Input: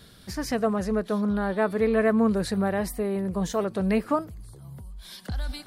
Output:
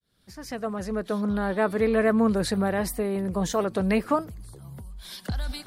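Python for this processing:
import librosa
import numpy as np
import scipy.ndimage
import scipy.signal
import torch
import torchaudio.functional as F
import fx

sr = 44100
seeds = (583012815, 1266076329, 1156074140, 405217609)

y = fx.fade_in_head(x, sr, length_s=1.45)
y = fx.hpss(y, sr, part='percussive', gain_db=4)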